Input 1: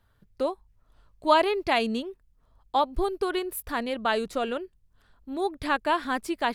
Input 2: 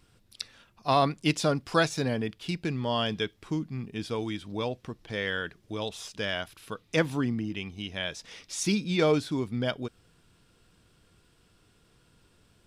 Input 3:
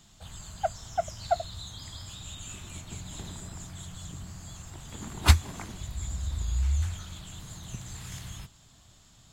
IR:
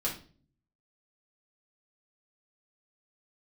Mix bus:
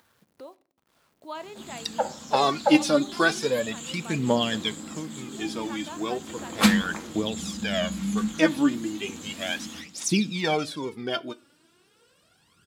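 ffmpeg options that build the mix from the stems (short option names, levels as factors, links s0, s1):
-filter_complex "[0:a]bandreject=f=398.8:t=h:w=4,bandreject=f=797.6:t=h:w=4,bandreject=f=1196.4:t=h:w=4,bandreject=f=1595.2:t=h:w=4,bandreject=f=1994:t=h:w=4,acompressor=mode=upward:threshold=0.0447:ratio=2.5,acrusher=bits=7:mix=0:aa=0.000001,volume=0.133,asplit=2[s0][s1];[s1]volume=0.126[s2];[1:a]aphaser=in_gain=1:out_gain=1:delay=3.6:decay=0.73:speed=0.35:type=triangular,adelay=1450,volume=0.944,asplit=2[s3][s4];[s4]volume=0.0944[s5];[2:a]aeval=exprs='val(0)*sin(2*PI*130*n/s)':c=same,adelay=1350,volume=1.06,asplit=2[s6][s7];[s7]volume=0.668[s8];[3:a]atrim=start_sample=2205[s9];[s2][s5][s8]amix=inputs=3:normalize=0[s10];[s10][s9]afir=irnorm=-1:irlink=0[s11];[s0][s3][s6][s11]amix=inputs=4:normalize=0,highpass=180"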